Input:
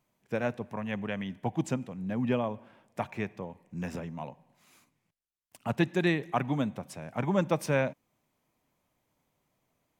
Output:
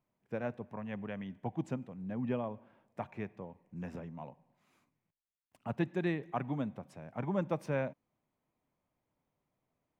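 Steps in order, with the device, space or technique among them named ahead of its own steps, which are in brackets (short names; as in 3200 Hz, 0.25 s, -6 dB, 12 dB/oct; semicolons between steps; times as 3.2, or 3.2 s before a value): through cloth (high shelf 3200 Hz -13.5 dB); gain -6 dB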